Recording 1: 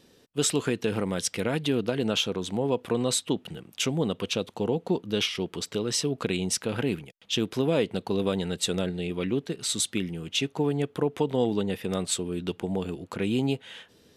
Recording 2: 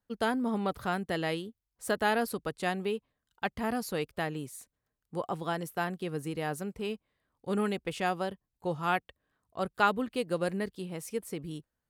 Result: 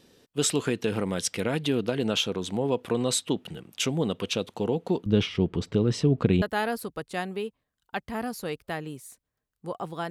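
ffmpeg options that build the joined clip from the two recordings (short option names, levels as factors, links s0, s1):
-filter_complex "[0:a]asettb=1/sr,asplit=3[s0][s1][s2];[s0]atrim=end=5.064[s3];[s1]atrim=start=5.06:end=6.42,asetpts=PTS-STARTPTS,afade=t=in:d=0.004:c=qsin,afade=t=out:st=1.356:d=0.004:c=qsin,aemphasis=mode=reproduction:type=riaa[s4];[s2]atrim=start=6.416[s5];[s3][s4]acrossfade=d=0.004:c1=hsin:c2=qsin[s6];[s6][s5]acrossfade=d=0.004:c1=qsin:c2=hsin,apad=whole_dur=10.1,atrim=end=10.1,atrim=end=6.422[s7];[1:a]atrim=start=1.908:end=5.59[s8];[s7][s8]acrossfade=d=0.004:c1=hsin:c2=hsin"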